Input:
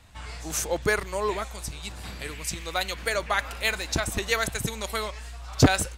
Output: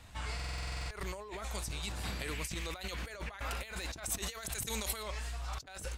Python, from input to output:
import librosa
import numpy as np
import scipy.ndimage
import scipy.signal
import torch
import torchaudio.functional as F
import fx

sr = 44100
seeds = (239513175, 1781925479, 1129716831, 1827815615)

y = fx.over_compress(x, sr, threshold_db=-36.0, ratio=-1.0)
y = fx.high_shelf(y, sr, hz=3500.0, db=8.0, at=(4.04, 5.03))
y = fx.buffer_glitch(y, sr, at_s=(0.35,), block=2048, repeats=11)
y = F.gain(torch.from_numpy(y), -6.0).numpy()